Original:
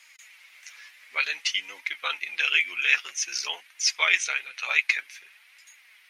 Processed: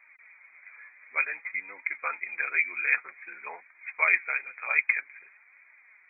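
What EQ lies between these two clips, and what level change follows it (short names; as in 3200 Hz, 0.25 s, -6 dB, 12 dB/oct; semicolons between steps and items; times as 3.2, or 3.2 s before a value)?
brick-wall FIR low-pass 2500 Hz; 0.0 dB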